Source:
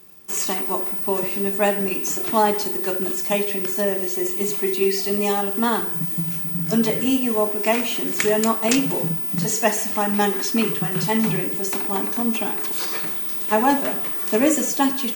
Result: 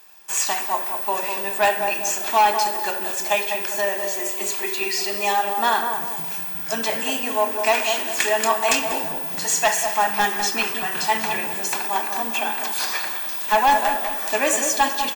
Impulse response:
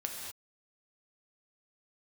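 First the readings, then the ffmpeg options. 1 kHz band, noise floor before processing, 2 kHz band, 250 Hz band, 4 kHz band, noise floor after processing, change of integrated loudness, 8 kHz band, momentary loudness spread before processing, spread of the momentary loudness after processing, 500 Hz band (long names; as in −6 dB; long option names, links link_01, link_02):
+5.0 dB, −26 dBFS, +5.5 dB, −12.0 dB, +4.0 dB, −28 dBFS, −0.5 dB, +3.5 dB, 3 LU, 5 LU, −2.0 dB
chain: -filter_complex "[0:a]highpass=700,highshelf=frequency=8600:gain=-4.5,aecho=1:1:1.2:0.4,volume=17dB,asoftclip=hard,volume=-17dB,asplit=2[link_01][link_02];[link_02]adelay=200,lowpass=frequency=890:poles=1,volume=-4dB,asplit=2[link_03][link_04];[link_04]adelay=200,lowpass=frequency=890:poles=1,volume=0.51,asplit=2[link_05][link_06];[link_06]adelay=200,lowpass=frequency=890:poles=1,volume=0.51,asplit=2[link_07][link_08];[link_08]adelay=200,lowpass=frequency=890:poles=1,volume=0.51,asplit=2[link_09][link_10];[link_10]adelay=200,lowpass=frequency=890:poles=1,volume=0.51,asplit=2[link_11][link_12];[link_12]adelay=200,lowpass=frequency=890:poles=1,volume=0.51,asplit=2[link_13][link_14];[link_14]adelay=200,lowpass=frequency=890:poles=1,volume=0.51[link_15];[link_01][link_03][link_05][link_07][link_09][link_11][link_13][link_15]amix=inputs=8:normalize=0,asplit=2[link_16][link_17];[1:a]atrim=start_sample=2205[link_18];[link_17][link_18]afir=irnorm=-1:irlink=0,volume=-13.5dB[link_19];[link_16][link_19]amix=inputs=2:normalize=0,volume=3.5dB"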